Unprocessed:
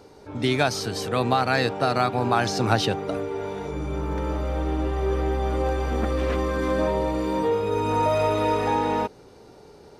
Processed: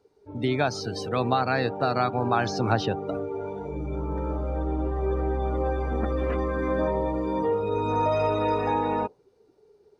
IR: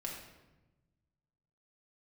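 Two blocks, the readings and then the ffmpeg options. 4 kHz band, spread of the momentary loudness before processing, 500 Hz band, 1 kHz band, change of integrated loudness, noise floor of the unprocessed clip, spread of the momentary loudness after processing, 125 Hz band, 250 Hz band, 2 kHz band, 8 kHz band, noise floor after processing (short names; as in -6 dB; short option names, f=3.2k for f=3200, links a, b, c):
-6.5 dB, 7 LU, -2.0 dB, -2.0 dB, -2.5 dB, -49 dBFS, 7 LU, -2.0 dB, -2.0 dB, -4.0 dB, n/a, -62 dBFS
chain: -filter_complex "[0:a]afftdn=nr=18:nf=-34,acrossover=split=1800[a][b];[b]alimiter=level_in=0.5dB:limit=-24dB:level=0:latency=1:release=235,volume=-0.5dB[c];[a][c]amix=inputs=2:normalize=0,volume=-2dB"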